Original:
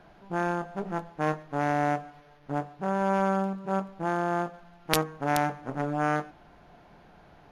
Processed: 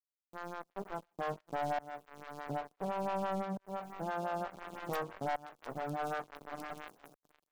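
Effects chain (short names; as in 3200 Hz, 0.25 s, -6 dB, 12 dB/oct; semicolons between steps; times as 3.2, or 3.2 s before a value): opening faded in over 1.65 s; low shelf 100 Hz -4.5 dB; notch 910 Hz, Q 26; swung echo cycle 0.707 s, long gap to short 3:1, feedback 44%, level -17.5 dB; sample leveller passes 3; dynamic EQ 310 Hz, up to -6 dB, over -35 dBFS, Q 1.6; tremolo saw up 0.56 Hz, depth 95%; requantised 10-bit, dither none; gate with hold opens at -53 dBFS; compressor 2.5:1, threshold -38 dBFS, peak gain reduction 16 dB; sample leveller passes 3; photocell phaser 5.9 Hz; gain -8 dB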